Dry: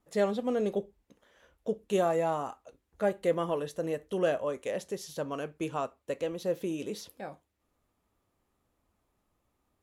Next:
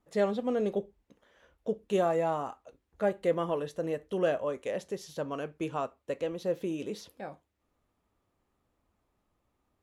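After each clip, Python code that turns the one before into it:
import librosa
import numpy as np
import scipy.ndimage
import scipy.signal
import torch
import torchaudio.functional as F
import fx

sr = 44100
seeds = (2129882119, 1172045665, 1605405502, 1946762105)

y = fx.high_shelf(x, sr, hz=6700.0, db=-8.5)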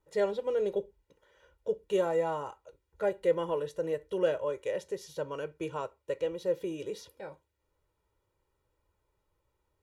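y = x + 0.84 * np.pad(x, (int(2.1 * sr / 1000.0), 0))[:len(x)]
y = y * 10.0 ** (-3.5 / 20.0)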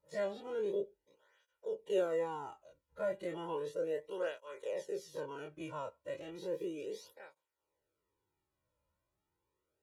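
y = fx.spec_dilate(x, sr, span_ms=60)
y = fx.flanger_cancel(y, sr, hz=0.34, depth_ms=2.7)
y = y * 10.0 ** (-7.0 / 20.0)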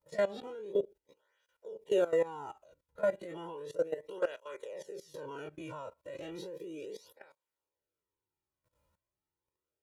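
y = fx.level_steps(x, sr, step_db=17)
y = y * 10.0 ** (8.0 / 20.0)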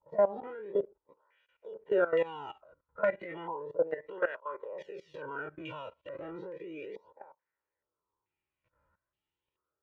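y = fx.filter_held_lowpass(x, sr, hz=2.3, low_hz=910.0, high_hz=3000.0)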